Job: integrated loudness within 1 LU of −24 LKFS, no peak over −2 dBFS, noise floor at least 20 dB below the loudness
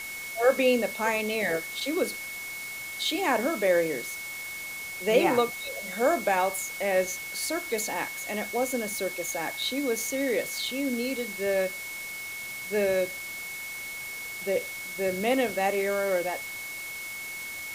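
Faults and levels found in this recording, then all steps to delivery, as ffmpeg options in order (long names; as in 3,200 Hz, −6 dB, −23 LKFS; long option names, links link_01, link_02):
interfering tone 2,200 Hz; level of the tone −36 dBFS; background noise floor −38 dBFS; target noise floor −49 dBFS; integrated loudness −28.5 LKFS; sample peak −9.5 dBFS; target loudness −24.0 LKFS
→ -af "bandreject=frequency=2200:width=30"
-af "afftdn=noise_reduction=11:noise_floor=-38"
-af "volume=4.5dB"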